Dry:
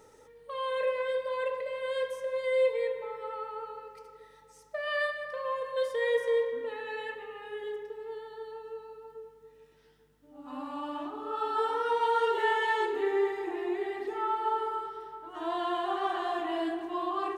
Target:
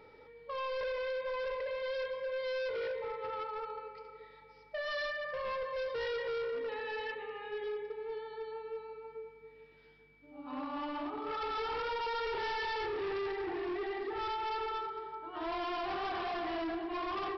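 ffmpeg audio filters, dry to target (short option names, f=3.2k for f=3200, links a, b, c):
-af "aresample=11025,asoftclip=type=hard:threshold=-34.5dB,aresample=44100,aeval=exprs='val(0)+0.000631*sin(2*PI*2300*n/s)':c=same"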